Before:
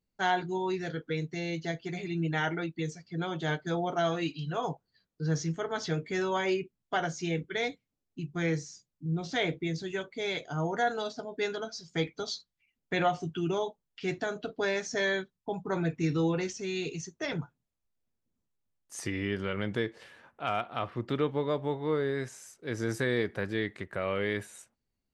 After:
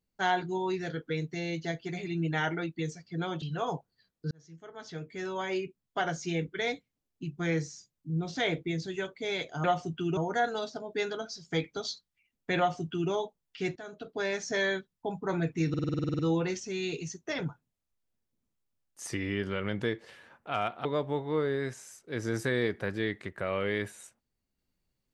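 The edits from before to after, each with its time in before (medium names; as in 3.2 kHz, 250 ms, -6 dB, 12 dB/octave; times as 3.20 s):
3.42–4.38 s: delete
5.27–7.10 s: fade in
13.01–13.54 s: copy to 10.60 s
14.19–14.85 s: fade in linear, from -14.5 dB
16.12 s: stutter 0.05 s, 11 plays
20.78–21.40 s: delete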